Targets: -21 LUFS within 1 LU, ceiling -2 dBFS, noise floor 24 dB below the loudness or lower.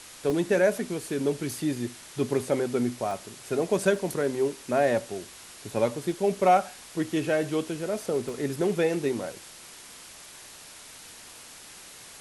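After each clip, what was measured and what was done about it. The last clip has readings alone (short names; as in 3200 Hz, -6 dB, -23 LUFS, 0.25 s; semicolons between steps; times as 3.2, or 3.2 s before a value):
dropouts 5; longest dropout 1.1 ms; noise floor -47 dBFS; noise floor target -52 dBFS; loudness -27.5 LUFS; peak -10.5 dBFS; loudness target -21.0 LUFS
-> interpolate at 0.3/3.11/3.96/6.12/8.29, 1.1 ms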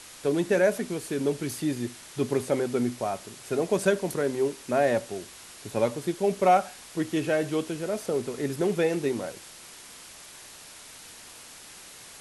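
dropouts 0; noise floor -47 dBFS; noise floor target -52 dBFS
-> denoiser 6 dB, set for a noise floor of -47 dBFS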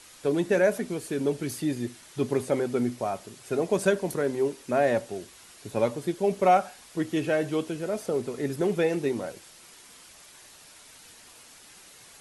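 noise floor -52 dBFS; loudness -27.5 LUFS; peak -10.5 dBFS; loudness target -21.0 LUFS
-> gain +6.5 dB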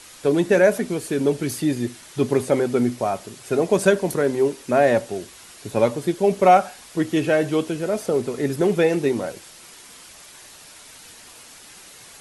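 loudness -21.0 LUFS; peak -4.0 dBFS; noise floor -45 dBFS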